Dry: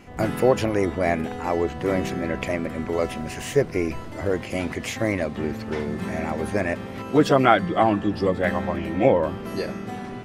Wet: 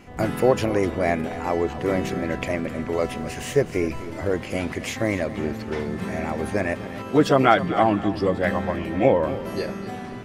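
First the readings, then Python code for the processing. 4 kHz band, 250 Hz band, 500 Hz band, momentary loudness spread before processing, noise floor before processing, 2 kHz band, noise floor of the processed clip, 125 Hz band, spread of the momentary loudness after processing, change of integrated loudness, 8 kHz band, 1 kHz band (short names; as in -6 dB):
0.0 dB, 0.0 dB, 0.0 dB, 10 LU, -35 dBFS, 0.0 dB, -35 dBFS, 0.0 dB, 10 LU, 0.0 dB, 0.0 dB, 0.0 dB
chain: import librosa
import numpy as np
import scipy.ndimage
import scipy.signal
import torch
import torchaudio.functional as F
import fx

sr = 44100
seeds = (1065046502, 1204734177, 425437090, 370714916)

y = fx.echo_feedback(x, sr, ms=252, feedback_pct=35, wet_db=-14.5)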